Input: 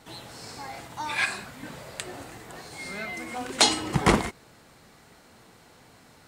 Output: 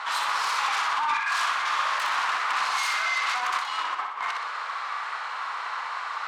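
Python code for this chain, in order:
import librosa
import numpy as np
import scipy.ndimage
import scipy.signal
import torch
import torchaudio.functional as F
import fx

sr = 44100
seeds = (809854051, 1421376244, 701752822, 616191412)

p1 = scipy.signal.sosfilt(scipy.signal.butter(2, 3400.0, 'lowpass', fs=sr, output='sos'), x)
p2 = fx.over_compress(p1, sr, threshold_db=-40.0, ratio=-1.0)
p3 = fx.fold_sine(p2, sr, drive_db=18, ceiling_db=-18.5)
p4 = fx.ladder_highpass(p3, sr, hz=1000.0, resonance_pct=65)
p5 = p4 + fx.echo_feedback(p4, sr, ms=62, feedback_pct=51, wet_db=-5.0, dry=0)
p6 = fx.doppler_dist(p5, sr, depth_ms=0.15)
y = p6 * 10.0 ** (2.5 / 20.0)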